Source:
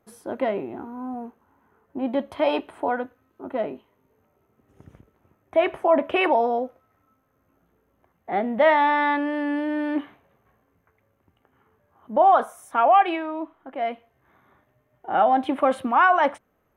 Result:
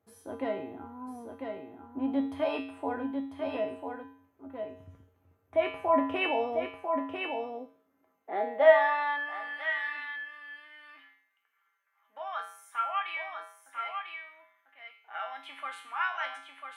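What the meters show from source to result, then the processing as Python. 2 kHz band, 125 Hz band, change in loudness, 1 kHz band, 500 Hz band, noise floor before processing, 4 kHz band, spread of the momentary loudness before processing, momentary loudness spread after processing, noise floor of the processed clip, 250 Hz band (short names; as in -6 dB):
-4.5 dB, n/a, -9.0 dB, -11.5 dB, -6.5 dB, -69 dBFS, -4.5 dB, 16 LU, 17 LU, -74 dBFS, -8.5 dB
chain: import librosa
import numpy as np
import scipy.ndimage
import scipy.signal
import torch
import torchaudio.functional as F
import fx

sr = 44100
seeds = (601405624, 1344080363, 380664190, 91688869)

y = fx.comb_fb(x, sr, f0_hz=91.0, decay_s=0.56, harmonics='odd', damping=0.0, mix_pct=90)
y = y + 10.0 ** (-5.5 / 20.0) * np.pad(y, (int(996 * sr / 1000.0), 0))[:len(y)]
y = fx.filter_sweep_highpass(y, sr, from_hz=72.0, to_hz=1800.0, start_s=6.89, end_s=9.78, q=1.5)
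y = y * 10.0 ** (5.5 / 20.0)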